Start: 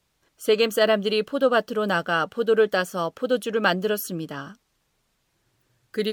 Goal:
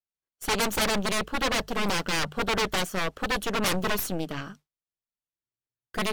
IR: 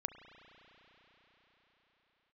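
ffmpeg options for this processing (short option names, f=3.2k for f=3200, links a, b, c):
-filter_complex "[0:a]aeval=exprs='0.501*(cos(1*acos(clip(val(0)/0.501,-1,1)))-cos(1*PI/2))+0.126*(cos(8*acos(clip(val(0)/0.501,-1,1)))-cos(8*PI/2))':c=same,bandreject=f=50:t=h:w=6,bandreject=f=100:t=h:w=6,bandreject=f=150:t=h:w=6,agate=range=-33dB:threshold=-42dB:ratio=3:detection=peak,acrossover=split=4200[a][b];[a]aeval=exprs='0.126*(abs(mod(val(0)/0.126+3,4)-2)-1)':c=same[c];[c][b]amix=inputs=2:normalize=0"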